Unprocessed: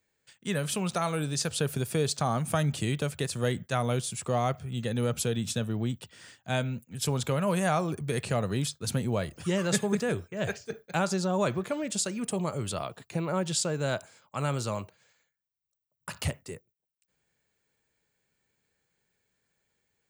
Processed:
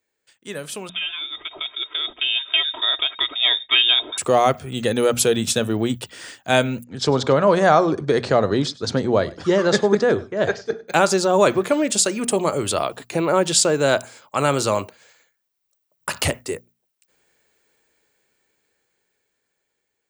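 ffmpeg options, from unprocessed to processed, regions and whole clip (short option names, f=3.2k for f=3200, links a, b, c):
-filter_complex "[0:a]asettb=1/sr,asplit=3[a][b][c];[a]atrim=end=0.894[d];[b]atrim=start=0.89:end=4.18,asetpts=PTS-STARTPTS,afade=t=in:d=0.004:c=qsin,afade=t=out:st=3.286:d=0.004:c=qsin,aecho=1:1:3.2:0.67,atrim=end_sample=145089,lowpass=f=3.2k:t=q:w=0.5098,lowpass=f=3.2k:t=q:w=0.6013,lowpass=f=3.2k:t=q:w=0.9,lowpass=f=3.2k:t=q:w=2.563,afreqshift=-3800[e];[c]atrim=start=4.176[f];[d][e]acrossfade=d=0.004:c1=hsin:c2=qsin[g];[g][f]acrossfade=d=0.004:c1=qsin:c2=hsin,asettb=1/sr,asplit=3[h][i][j];[h]atrim=end=6.844[k];[i]atrim=start=6.84:end=10.88,asetpts=PTS-STARTPTS,afade=t=in:d=0.004:c=qsin,afade=t=out:st=4.036:d=0.004:c=qsin,lowpass=f=5.3k:w=0.5412,lowpass=f=5.3k:w=1.3066,equalizer=f=2.6k:t=o:w=0.54:g=-11,aecho=1:1:100:0.0944,atrim=end_sample=178164[l];[j]atrim=start=10.876[m];[k][l]acrossfade=d=0.004:c1=hsin:c2=qsin[n];[n][m]acrossfade=d=0.004:c1=qsin:c2=hsin,lowshelf=f=230:t=q:w=1.5:g=-7,bandreject=f=60:t=h:w=6,bandreject=f=120:t=h:w=6,bandreject=f=180:t=h:w=6,bandreject=f=240:t=h:w=6,dynaudnorm=f=810:g=7:m=16.5dB"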